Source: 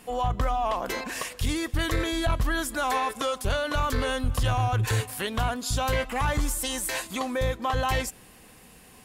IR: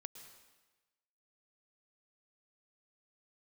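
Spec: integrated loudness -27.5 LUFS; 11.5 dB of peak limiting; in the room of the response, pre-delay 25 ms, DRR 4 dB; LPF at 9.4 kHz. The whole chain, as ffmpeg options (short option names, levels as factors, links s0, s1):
-filter_complex "[0:a]lowpass=9400,alimiter=level_in=1.68:limit=0.0631:level=0:latency=1,volume=0.596,asplit=2[s0][s1];[1:a]atrim=start_sample=2205,adelay=25[s2];[s1][s2]afir=irnorm=-1:irlink=0,volume=1.12[s3];[s0][s3]amix=inputs=2:normalize=0,volume=2.37"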